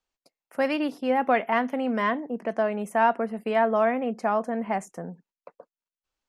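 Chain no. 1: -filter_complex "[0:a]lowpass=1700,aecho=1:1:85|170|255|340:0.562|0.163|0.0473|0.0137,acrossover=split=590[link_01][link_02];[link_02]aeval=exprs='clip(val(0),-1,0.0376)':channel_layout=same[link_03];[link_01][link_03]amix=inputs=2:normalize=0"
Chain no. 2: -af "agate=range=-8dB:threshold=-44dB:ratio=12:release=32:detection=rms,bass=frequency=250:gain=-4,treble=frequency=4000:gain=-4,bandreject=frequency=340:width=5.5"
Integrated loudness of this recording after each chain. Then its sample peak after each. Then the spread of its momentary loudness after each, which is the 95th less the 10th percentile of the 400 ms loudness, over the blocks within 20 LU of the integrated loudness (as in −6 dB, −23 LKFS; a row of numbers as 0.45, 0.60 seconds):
−26.0, −26.5 LKFS; −7.5, −9.5 dBFS; 8, 8 LU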